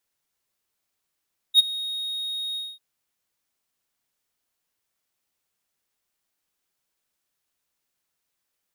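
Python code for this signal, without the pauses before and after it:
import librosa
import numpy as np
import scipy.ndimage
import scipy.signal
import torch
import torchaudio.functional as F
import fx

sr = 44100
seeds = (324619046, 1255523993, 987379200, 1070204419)

y = fx.adsr_tone(sr, wave='triangle', hz=3740.0, attack_ms=51.0, decay_ms=20.0, sustain_db=-18.5, held_s=1.02, release_ms=225.0, level_db=-7.0)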